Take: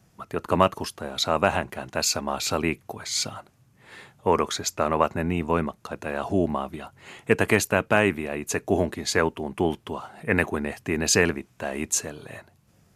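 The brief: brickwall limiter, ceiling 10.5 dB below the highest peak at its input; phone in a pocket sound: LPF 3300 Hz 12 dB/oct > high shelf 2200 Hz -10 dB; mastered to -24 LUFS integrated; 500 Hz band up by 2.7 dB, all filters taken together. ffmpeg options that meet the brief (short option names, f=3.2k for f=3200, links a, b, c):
-af "equalizer=f=500:t=o:g=4,alimiter=limit=-13dB:level=0:latency=1,lowpass=3.3k,highshelf=f=2.2k:g=-10,volume=5.5dB"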